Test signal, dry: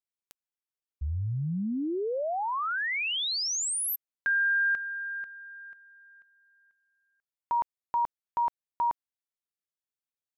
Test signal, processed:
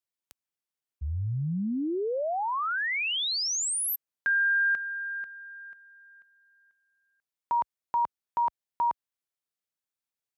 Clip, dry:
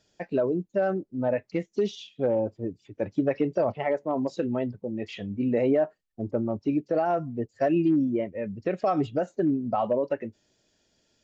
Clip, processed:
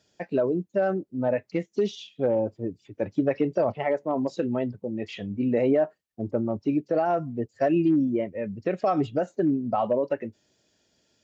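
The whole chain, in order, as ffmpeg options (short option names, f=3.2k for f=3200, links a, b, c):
-af "highpass=61,volume=1dB"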